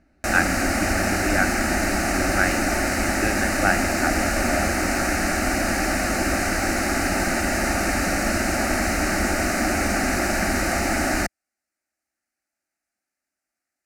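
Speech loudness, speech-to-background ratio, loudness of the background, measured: -27.0 LUFS, -5.0 dB, -22.0 LUFS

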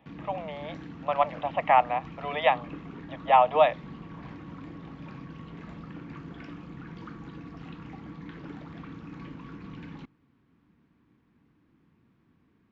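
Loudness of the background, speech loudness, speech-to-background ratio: -43.0 LUFS, -25.5 LUFS, 17.5 dB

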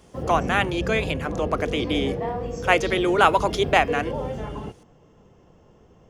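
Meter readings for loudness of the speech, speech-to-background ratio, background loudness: -23.0 LUFS, 7.0 dB, -30.0 LUFS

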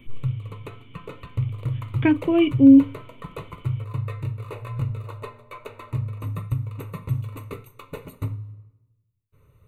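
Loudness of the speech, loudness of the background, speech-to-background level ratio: -17.0 LUFS, -32.0 LUFS, 15.0 dB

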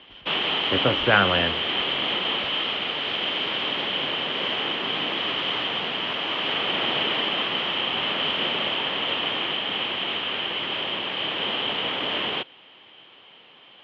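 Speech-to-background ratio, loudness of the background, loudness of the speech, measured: 1.0 dB, -24.0 LUFS, -23.0 LUFS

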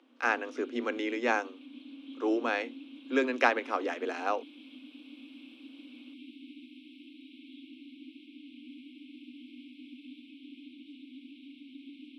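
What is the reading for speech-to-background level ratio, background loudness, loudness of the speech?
18.0 dB, -49.0 LUFS, -31.0 LUFS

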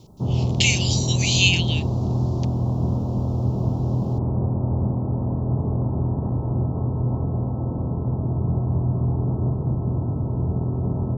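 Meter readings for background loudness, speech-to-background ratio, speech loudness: -24.0 LUFS, 3.0 dB, -21.0 LUFS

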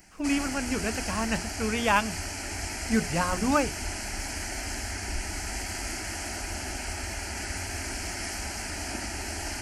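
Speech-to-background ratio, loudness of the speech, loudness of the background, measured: 4.5 dB, -28.5 LUFS, -33.0 LUFS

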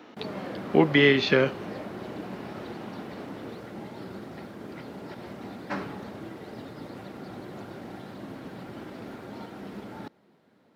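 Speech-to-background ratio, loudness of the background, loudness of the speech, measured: 18.0 dB, -39.5 LUFS, -21.5 LUFS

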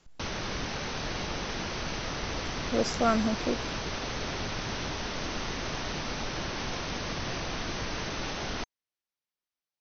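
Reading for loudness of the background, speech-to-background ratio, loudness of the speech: -34.0 LUFS, 4.0 dB, -30.0 LUFS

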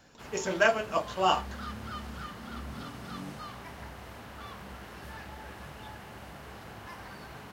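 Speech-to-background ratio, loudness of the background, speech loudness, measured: 14.5 dB, -43.0 LUFS, -28.5 LUFS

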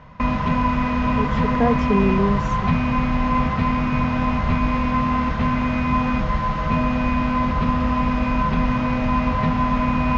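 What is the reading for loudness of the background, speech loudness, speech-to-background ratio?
-21.0 LUFS, -23.5 LUFS, -2.5 dB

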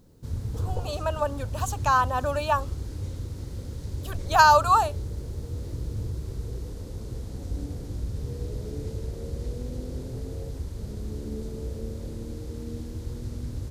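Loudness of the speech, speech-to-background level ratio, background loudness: -23.0 LUFS, 12.0 dB, -35.0 LUFS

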